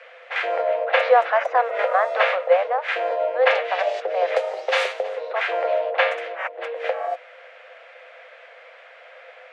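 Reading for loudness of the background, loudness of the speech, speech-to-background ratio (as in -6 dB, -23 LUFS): -24.0 LUFS, -23.5 LUFS, 0.5 dB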